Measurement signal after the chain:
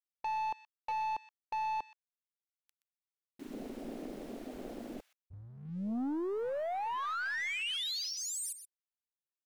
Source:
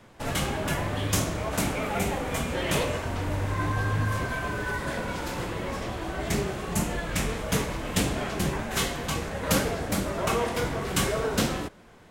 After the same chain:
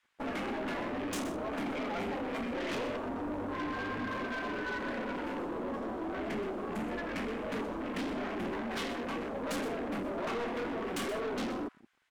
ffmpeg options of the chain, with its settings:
-filter_complex "[0:a]lowshelf=f=180:t=q:w=3:g=-10.5,afwtdn=0.0178,bass=f=250:g=-1,treble=f=4k:g=-5,asplit=2[a][b];[b]acompressor=threshold=-37dB:ratio=6,volume=1dB[c];[a][c]amix=inputs=2:normalize=0,aeval=exprs='(tanh(25.1*val(0)+0.1)-tanh(0.1))/25.1':c=same,acrossover=split=1300[d][e];[d]aeval=exprs='sgn(val(0))*max(abs(val(0))-0.00126,0)':c=same[f];[e]aecho=1:1:124:0.266[g];[f][g]amix=inputs=2:normalize=0,volume=-4dB"

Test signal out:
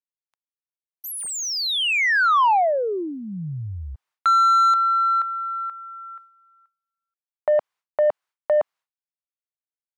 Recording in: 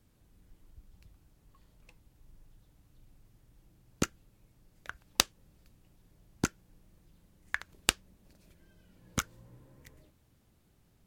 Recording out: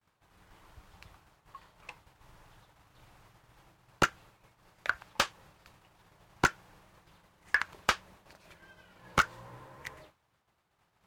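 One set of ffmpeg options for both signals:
-filter_complex "[0:a]equalizer=f=250:t=o:w=1:g=-11,equalizer=f=500:t=o:w=1:g=-4,equalizer=f=1k:t=o:w=1:g=4,agate=range=-33dB:threshold=-58dB:ratio=3:detection=peak,asplit=2[a][b];[b]highpass=f=720:p=1,volume=33dB,asoftclip=type=tanh:threshold=-0.5dB[c];[a][c]amix=inputs=2:normalize=0,lowpass=f=1.5k:p=1,volume=-6dB,volume=-6dB"

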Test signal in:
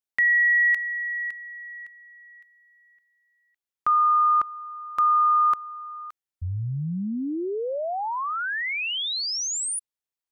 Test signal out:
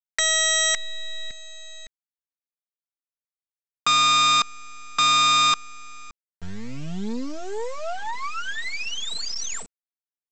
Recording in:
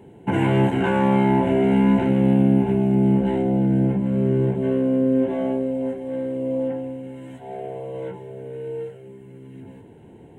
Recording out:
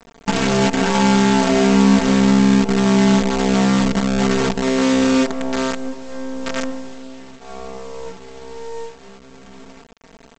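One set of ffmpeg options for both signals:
-af "aresample=16000,acrusher=bits=4:dc=4:mix=0:aa=0.000001,aresample=44100,aecho=1:1:4.4:0.8"

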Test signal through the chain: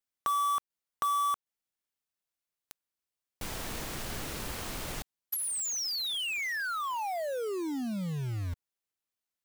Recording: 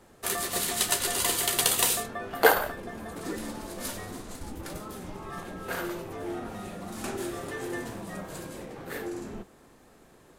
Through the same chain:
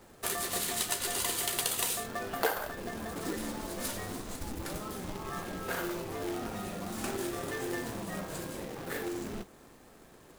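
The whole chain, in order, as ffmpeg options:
-af "acompressor=threshold=-32dB:ratio=2.5,acrusher=bits=2:mode=log:mix=0:aa=0.000001"

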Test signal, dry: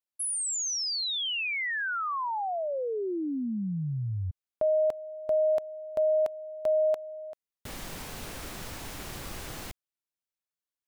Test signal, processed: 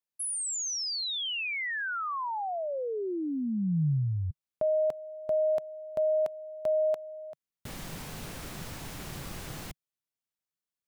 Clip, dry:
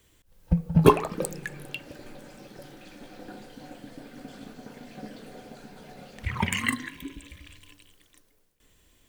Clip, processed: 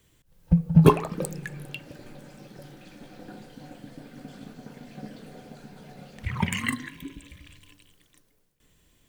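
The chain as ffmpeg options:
-af "equalizer=f=150:t=o:w=0.89:g=7.5,volume=-2dB"

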